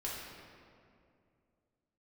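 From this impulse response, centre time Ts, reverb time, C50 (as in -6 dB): 112 ms, 2.4 s, -0.5 dB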